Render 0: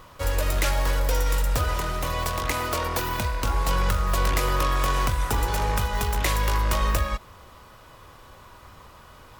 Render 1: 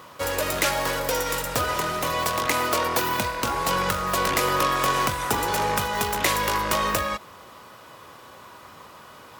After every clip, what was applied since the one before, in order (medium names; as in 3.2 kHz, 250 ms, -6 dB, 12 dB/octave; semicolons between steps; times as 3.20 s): high-pass 170 Hz 12 dB/octave; trim +4 dB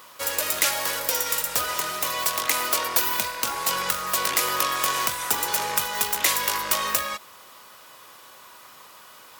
tilt EQ +3 dB/octave; trim -4 dB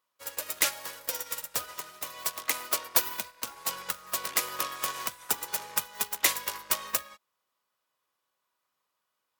upward expansion 2.5:1, over -40 dBFS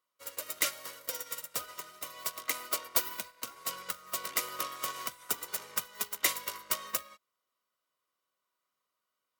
comb of notches 850 Hz; trim -3 dB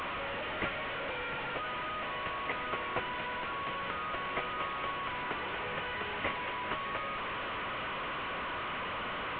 one-bit delta coder 16 kbps, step -32 dBFS; trim +1.5 dB